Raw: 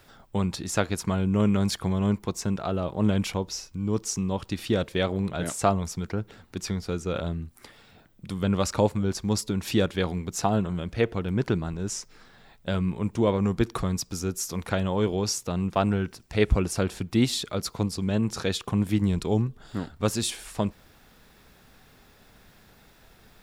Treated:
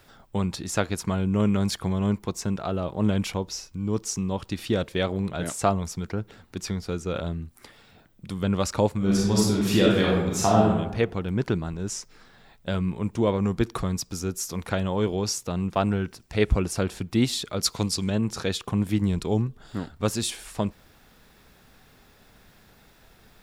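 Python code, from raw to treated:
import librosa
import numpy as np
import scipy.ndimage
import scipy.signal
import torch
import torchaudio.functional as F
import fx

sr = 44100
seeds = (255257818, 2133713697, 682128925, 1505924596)

y = fx.reverb_throw(x, sr, start_s=8.97, length_s=1.72, rt60_s=0.95, drr_db=-4.5)
y = fx.peak_eq(y, sr, hz=5800.0, db=9.5, octaves=3.0, at=(17.61, 18.1))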